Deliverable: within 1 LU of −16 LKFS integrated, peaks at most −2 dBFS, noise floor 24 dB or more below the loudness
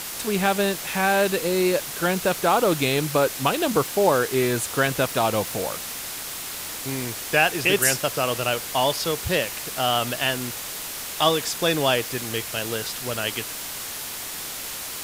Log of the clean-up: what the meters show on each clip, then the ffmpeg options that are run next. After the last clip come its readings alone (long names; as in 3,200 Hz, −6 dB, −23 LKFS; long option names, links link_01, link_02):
background noise floor −33 dBFS; target noise floor −48 dBFS; integrated loudness −23.5 LKFS; sample peak −5.5 dBFS; target loudness −16.0 LKFS
→ -af "afftdn=noise_reduction=15:noise_floor=-33"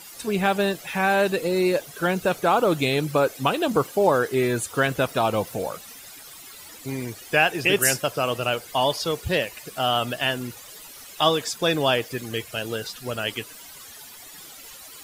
background noise floor −44 dBFS; target noise floor −48 dBFS
→ -af "afftdn=noise_reduction=6:noise_floor=-44"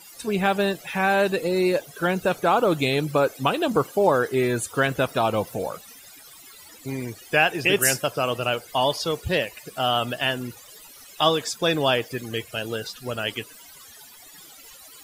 background noise floor −47 dBFS; target noise floor −48 dBFS
→ -af "afftdn=noise_reduction=6:noise_floor=-47"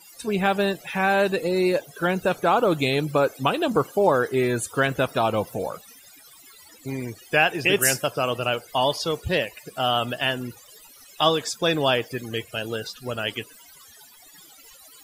background noise floor −50 dBFS; integrated loudness −23.5 LKFS; sample peak −5.5 dBFS; target loudness −16.0 LKFS
→ -af "volume=7.5dB,alimiter=limit=-2dB:level=0:latency=1"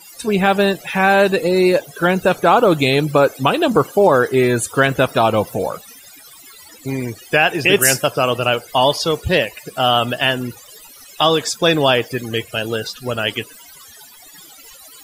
integrated loudness −16.5 LKFS; sample peak −2.0 dBFS; background noise floor −42 dBFS